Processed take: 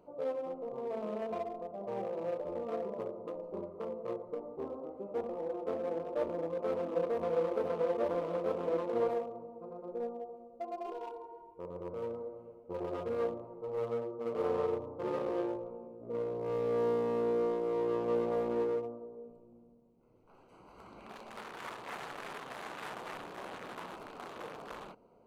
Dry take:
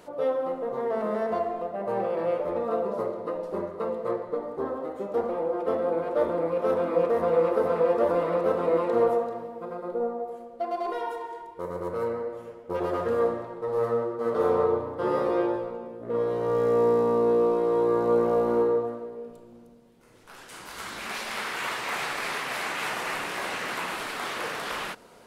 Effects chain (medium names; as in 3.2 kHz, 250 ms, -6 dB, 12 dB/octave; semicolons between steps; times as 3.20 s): local Wiener filter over 25 samples; trim -8.5 dB